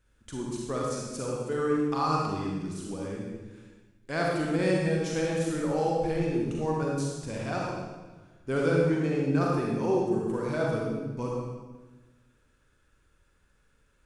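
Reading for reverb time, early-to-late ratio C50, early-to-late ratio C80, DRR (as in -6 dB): 1.3 s, -2.0 dB, 1.0 dB, -3.5 dB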